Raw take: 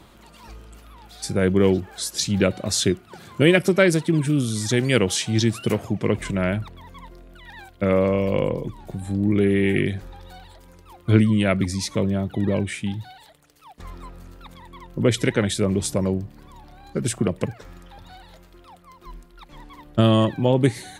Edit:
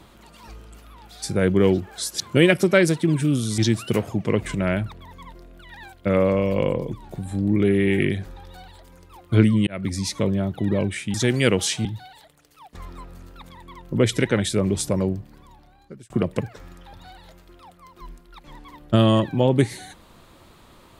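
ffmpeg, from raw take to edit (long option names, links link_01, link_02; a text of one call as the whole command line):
ffmpeg -i in.wav -filter_complex "[0:a]asplit=7[link_01][link_02][link_03][link_04][link_05][link_06][link_07];[link_01]atrim=end=2.202[link_08];[link_02]atrim=start=3.248:end=4.632[link_09];[link_03]atrim=start=5.338:end=11.43,asetpts=PTS-STARTPTS,afade=type=out:start_time=6.088:duration=0.004:curve=hsin[link_10];[link_04]atrim=start=11.43:end=12.902,asetpts=PTS-STARTPTS,afade=type=in:duration=0.3[link_11];[link_05]atrim=start=4.628:end=5.342[link_12];[link_06]atrim=start=12.898:end=17.15,asetpts=PTS-STARTPTS,afade=type=out:start_time=3.292:duration=0.96[link_13];[link_07]atrim=start=17.15,asetpts=PTS-STARTPTS,afade=type=in:duration=0.004:curve=hsin[link_14];[link_08][link_09]acrossfade=duration=0.004:curve1=hsin:curve2=hsin[link_15];[link_10][link_11]concat=n=2:v=0:a=1[link_16];[link_15][link_16]acrossfade=duration=0.004:curve1=hsin:curve2=hsin[link_17];[link_17][link_12]acrossfade=duration=0.004:curve1=hsin:curve2=hsin[link_18];[link_13][link_14]concat=n=2:v=0:a=1[link_19];[link_18][link_19]acrossfade=duration=0.004:curve1=hsin:curve2=hsin" out.wav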